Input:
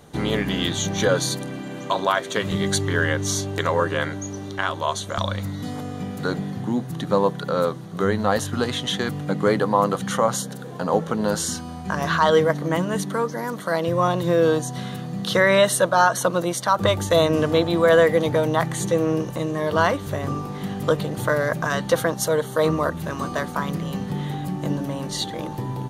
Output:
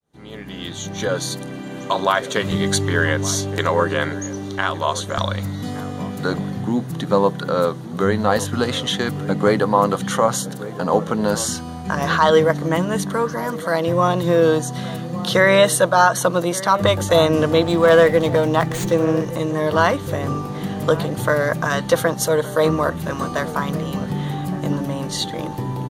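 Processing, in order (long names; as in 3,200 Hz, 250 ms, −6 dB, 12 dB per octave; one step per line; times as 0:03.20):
fade in at the beginning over 2.06 s
slap from a distant wall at 200 metres, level −15 dB
0:17.62–0:19.26: windowed peak hold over 3 samples
level +3 dB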